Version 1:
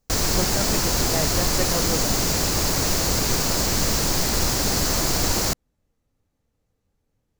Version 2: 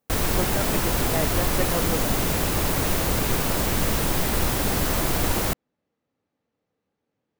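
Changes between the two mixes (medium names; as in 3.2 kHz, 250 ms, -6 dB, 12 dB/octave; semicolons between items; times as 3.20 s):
speech: add band-pass 210–3700 Hz; background: add high-order bell 5.6 kHz -10 dB 1 oct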